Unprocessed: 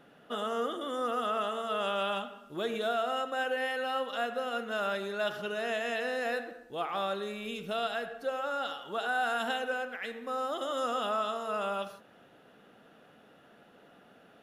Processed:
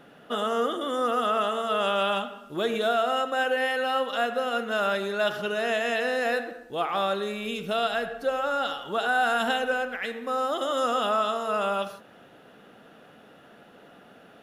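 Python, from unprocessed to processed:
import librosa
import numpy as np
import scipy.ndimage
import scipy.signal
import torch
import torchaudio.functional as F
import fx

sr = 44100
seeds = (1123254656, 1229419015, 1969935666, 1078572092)

y = fx.low_shelf(x, sr, hz=100.0, db=10.5, at=(7.93, 10.06))
y = y * librosa.db_to_amplitude(6.5)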